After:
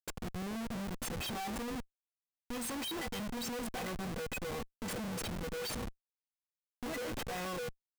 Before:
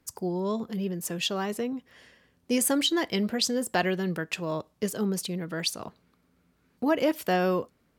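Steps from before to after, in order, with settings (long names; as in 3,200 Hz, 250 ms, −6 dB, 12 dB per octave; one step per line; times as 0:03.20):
stiff-string resonator 230 Hz, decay 0.26 s, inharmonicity 0.03
comparator with hysteresis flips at −48.5 dBFS
level +4 dB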